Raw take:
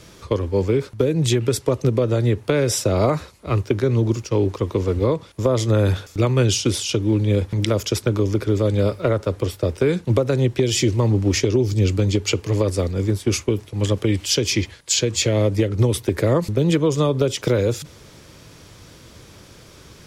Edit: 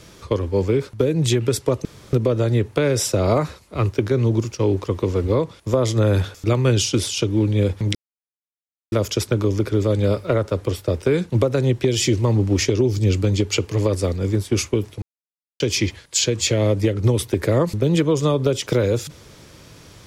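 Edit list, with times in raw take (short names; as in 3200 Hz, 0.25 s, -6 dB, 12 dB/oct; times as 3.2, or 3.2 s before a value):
1.85 insert room tone 0.28 s
7.67 insert silence 0.97 s
13.77–14.35 mute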